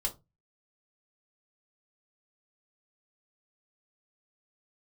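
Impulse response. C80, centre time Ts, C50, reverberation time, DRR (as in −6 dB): 25.5 dB, 10 ms, 16.5 dB, 0.25 s, −1.0 dB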